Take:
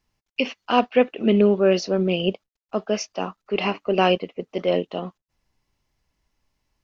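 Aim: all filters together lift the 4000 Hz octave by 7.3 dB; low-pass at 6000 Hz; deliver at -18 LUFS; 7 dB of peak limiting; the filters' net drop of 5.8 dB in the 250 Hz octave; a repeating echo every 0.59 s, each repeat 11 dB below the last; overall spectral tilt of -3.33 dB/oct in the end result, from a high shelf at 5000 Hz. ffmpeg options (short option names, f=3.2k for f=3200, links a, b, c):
-af "lowpass=6k,equalizer=f=250:t=o:g=-8.5,equalizer=f=4k:t=o:g=9,highshelf=f=5k:g=8.5,alimiter=limit=-10dB:level=0:latency=1,aecho=1:1:590|1180|1770:0.282|0.0789|0.0221,volume=6dB"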